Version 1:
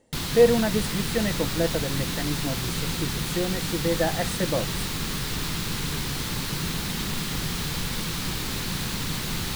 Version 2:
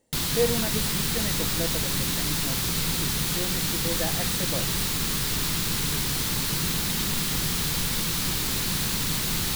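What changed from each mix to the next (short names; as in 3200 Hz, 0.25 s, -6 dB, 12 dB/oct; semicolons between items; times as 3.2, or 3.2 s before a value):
speech -7.5 dB; master: add high shelf 5500 Hz +8.5 dB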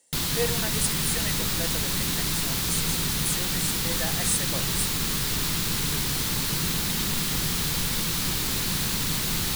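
speech: add tilt +4.5 dB/oct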